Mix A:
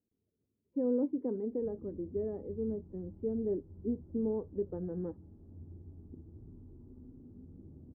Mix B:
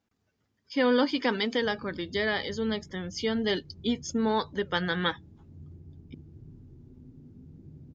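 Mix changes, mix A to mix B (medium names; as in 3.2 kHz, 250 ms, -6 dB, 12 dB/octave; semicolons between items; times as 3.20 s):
speech: remove four-pole ladder low-pass 500 Hz, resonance 40%; background: add peaking EQ 140 Hz +14 dB 0.36 oct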